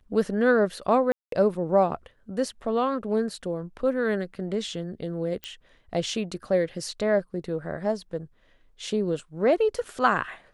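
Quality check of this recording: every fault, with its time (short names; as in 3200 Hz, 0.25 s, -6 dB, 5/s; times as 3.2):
1.12–1.32 gap 0.203 s
5.44 pop -18 dBFS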